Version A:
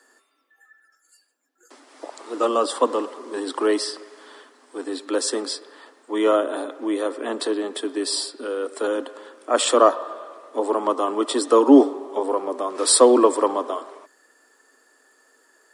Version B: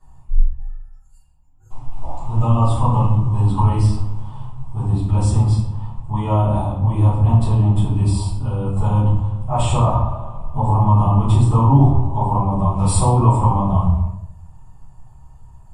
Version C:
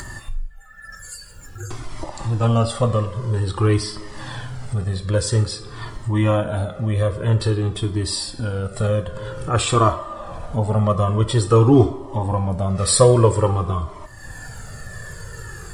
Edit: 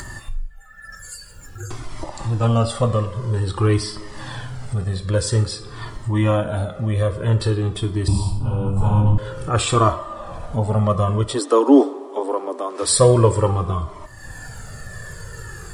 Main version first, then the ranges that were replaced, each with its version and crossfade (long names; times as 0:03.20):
C
0:08.08–0:09.18: punch in from B
0:11.28–0:12.93: punch in from A, crossfade 0.24 s